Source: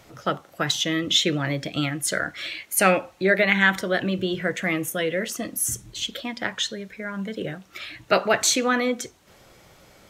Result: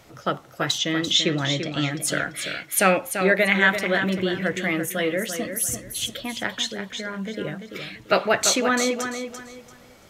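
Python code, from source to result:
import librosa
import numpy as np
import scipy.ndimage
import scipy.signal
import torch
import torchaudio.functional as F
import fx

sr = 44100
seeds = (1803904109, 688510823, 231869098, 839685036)

p1 = fx.lowpass(x, sr, hz=7600.0, slope=24, at=(0.78, 1.91))
y = p1 + fx.echo_feedback(p1, sr, ms=340, feedback_pct=27, wet_db=-8.0, dry=0)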